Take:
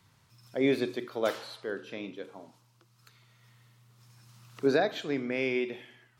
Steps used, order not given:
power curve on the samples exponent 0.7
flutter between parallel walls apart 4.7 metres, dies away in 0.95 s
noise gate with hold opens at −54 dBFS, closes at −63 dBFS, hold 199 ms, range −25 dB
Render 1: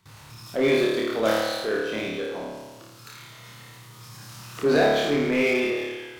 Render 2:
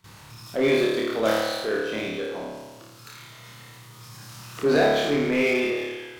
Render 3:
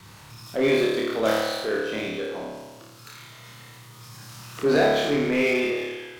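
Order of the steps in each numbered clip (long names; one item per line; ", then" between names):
noise gate with hold, then flutter between parallel walls, then power curve on the samples
flutter between parallel walls, then noise gate with hold, then power curve on the samples
flutter between parallel walls, then power curve on the samples, then noise gate with hold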